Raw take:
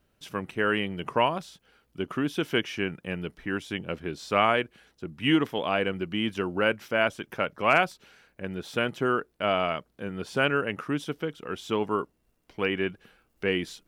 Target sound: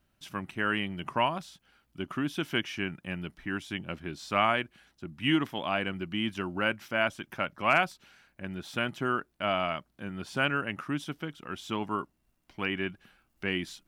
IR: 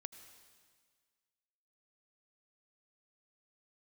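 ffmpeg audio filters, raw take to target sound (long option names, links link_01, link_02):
-af "equalizer=frequency=460:width=3.5:gain=-12,volume=-2dB"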